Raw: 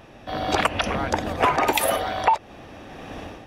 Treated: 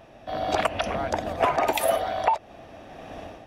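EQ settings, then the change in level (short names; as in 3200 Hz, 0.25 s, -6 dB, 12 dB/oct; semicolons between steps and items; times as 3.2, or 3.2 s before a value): bell 660 Hz +9 dB 0.37 oct; -5.5 dB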